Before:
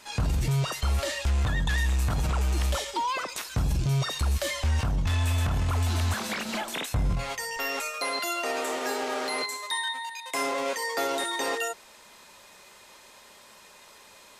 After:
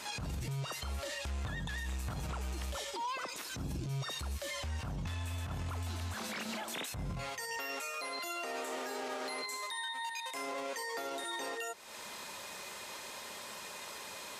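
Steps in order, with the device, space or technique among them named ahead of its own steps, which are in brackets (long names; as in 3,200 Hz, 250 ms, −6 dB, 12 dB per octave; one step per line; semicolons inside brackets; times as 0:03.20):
0:03.33–0:03.89: parametric band 290 Hz +8.5 dB 1.1 octaves
podcast mastering chain (high-pass filter 73 Hz 12 dB per octave; downward compressor 4 to 1, threshold −44 dBFS, peak gain reduction 18.5 dB; brickwall limiter −36.5 dBFS, peak gain reduction 10.5 dB; level +6.5 dB; MP3 96 kbit/s 48,000 Hz)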